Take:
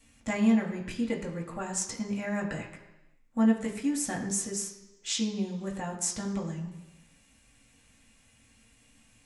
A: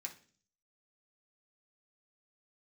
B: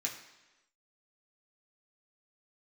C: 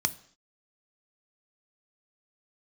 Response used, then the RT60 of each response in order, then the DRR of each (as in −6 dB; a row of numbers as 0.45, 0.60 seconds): B; 0.45 s, 1.1 s, non-exponential decay; −1.0, −2.5, 11.5 decibels